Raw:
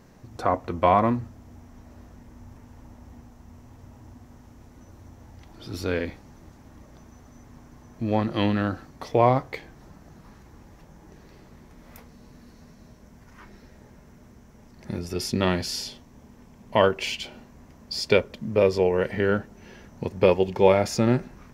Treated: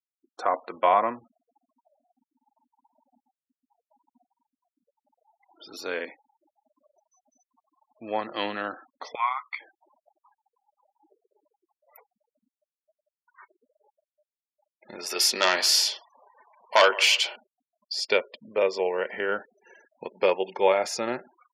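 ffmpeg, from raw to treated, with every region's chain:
-filter_complex "[0:a]asettb=1/sr,asplit=3[a][b][c];[a]atrim=end=9.154[d];[b]atrim=start=9.15:end=9.6,asetpts=PTS-STARTPTS,afade=t=in:d=0.004:c=qsin,afade=t=out:st=0.446:d=0.004:c=qsin,highpass=f=1.1k:w=0.5412,highpass=f=1.1k:w=1.3066,equalizer=f=6.6k:w=0.65:g=-8,aecho=1:1:0.9:0.83,atrim=end_sample=19845[e];[c]atrim=start=9.596[f];[d][e]acrossfade=d=0.004:c1=hsin:c2=qsin[g];[g][f]acrossfade=d=0.004:c1=qsin:c2=hsin,asettb=1/sr,asplit=3[h][i][j];[h]atrim=end=14.994[k];[i]atrim=start=14.99:end=17.36,asetpts=PTS-STARTPTS,afade=t=in:d=0.004:c=qsin,afade=t=out:st=2.366:d=0.004:c=qsin,highpass=f=930:p=1,asplit=2[l][m];[m]adelay=160,lowpass=f=1.5k:p=1,volume=-21dB,asplit=2[n][o];[o]adelay=160,lowpass=f=1.5k:p=1,volume=0.38,asplit=2[p][q];[q]adelay=160,lowpass=f=1.5k:p=1,volume=0.38[r];[l][n][p][r]amix=inputs=4:normalize=0,atrim=end_sample=104517,aeval=exprs='0.355*sin(PI/2*2.24*val(0)/0.355)':c=same[s];[j]atrim=start=17.356[t];[k][s]acrossfade=d=0.004:c1=hsin:c2=qsin[u];[u][t]acrossfade=d=0.004:c1=qsin:c2=hsin,highpass=550,afftfilt=real='re*gte(hypot(re,im),0.00708)':imag='im*gte(hypot(re,im),0.00708)':win_size=1024:overlap=0.75"

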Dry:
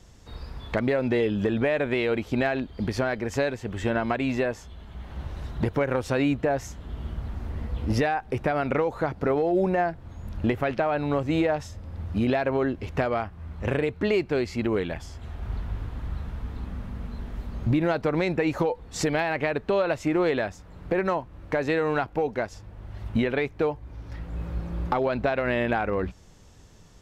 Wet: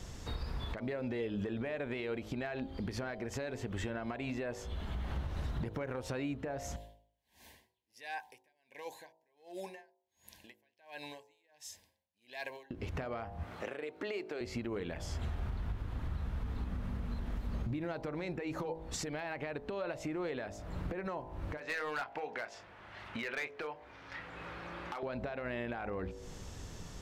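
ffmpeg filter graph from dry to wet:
-filter_complex "[0:a]asettb=1/sr,asplit=3[a][b][c];[a]atrim=end=6.764[d];[b]atrim=start=6.76:end=12.71,asetpts=PTS-STARTPTS,afade=t=in:d=0.004:c=qsin,afade=t=out:st=5.946:d=0.004:c=qsin,asuperstop=centerf=1300:order=20:qfactor=3,aderivative,aeval=exprs='val(0)*pow(10,-39*(0.5-0.5*cos(2*PI*1.4*n/s))/20)':c=same[e];[c]atrim=start=12.706[f];[d][e]acrossfade=d=0.004:c1=hsin:c2=qsin[g];[g][f]acrossfade=d=0.004:c1=qsin:c2=hsin,asettb=1/sr,asplit=3[h][i][j];[h]atrim=end=13.434[k];[i]atrim=start=13.43:end=14.41,asetpts=PTS-STARTPTS,afade=t=in:d=0.004:c=qsin,afade=t=out:st=0.976:d=0.004:c=qsin,highpass=380,bandreject=f=1k:w=14[l];[j]atrim=start=14.406[m];[k][l]acrossfade=d=0.004:c1=hsin:c2=qsin[n];[n][m]acrossfade=d=0.004:c1=qsin:c2=hsin,asettb=1/sr,asplit=3[o][p][q];[o]atrim=end=21.574[r];[p]atrim=start=21.57:end=25.03,asetpts=PTS-STARTPTS,afade=t=in:d=0.004:c=qsin,afade=t=out:st=3.456:d=0.004:c=qsin,bandpass=f=2k:t=q:w=0.88,asplit=2[s][t];[t]adelay=26,volume=-11dB[u];[s][u]amix=inputs=2:normalize=0,atrim=end_sample=152586,volume=26dB,asoftclip=hard,volume=-26dB[v];[q]atrim=start=25.026[w];[r][v]acrossfade=d=0.004:c1=hsin:c2=qsin[x];[x][w]acrossfade=d=0.004:c1=qsin:c2=hsin,bandreject=f=53.72:t=h:w=4,bandreject=f=107.44:t=h:w=4,bandreject=f=161.16:t=h:w=4,bandreject=f=214.88:t=h:w=4,bandreject=f=268.6:t=h:w=4,bandreject=f=322.32:t=h:w=4,bandreject=f=376.04:t=h:w=4,bandreject=f=429.76:t=h:w=4,bandreject=f=483.48:t=h:w=4,bandreject=f=537.2:t=h:w=4,bandreject=f=590.92:t=h:w=4,bandreject=f=644.64:t=h:w=4,bandreject=f=698.36:t=h:w=4,bandreject=f=752.08:t=h:w=4,bandreject=f=805.8:t=h:w=4,bandreject=f=859.52:t=h:w=4,bandreject=f=913.24:t=h:w=4,bandreject=f=966.96:t=h:w=4,bandreject=f=1.02068k:t=h:w=4,acompressor=threshold=-39dB:ratio=5,alimiter=level_in=11dB:limit=-24dB:level=0:latency=1:release=221,volume=-11dB,volume=6dB"

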